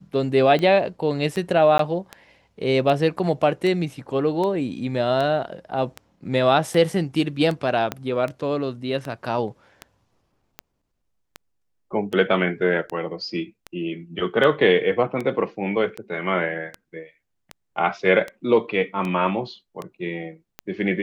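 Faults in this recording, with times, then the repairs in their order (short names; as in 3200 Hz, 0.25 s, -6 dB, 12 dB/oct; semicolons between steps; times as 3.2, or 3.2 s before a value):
tick 78 rpm -16 dBFS
1.78–1.79 gap 13 ms
7.92 pop -11 dBFS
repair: de-click; interpolate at 1.78, 13 ms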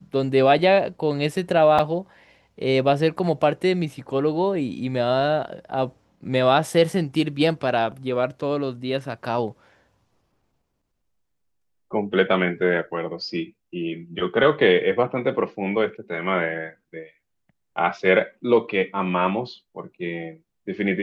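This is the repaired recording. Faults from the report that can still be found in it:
7.92 pop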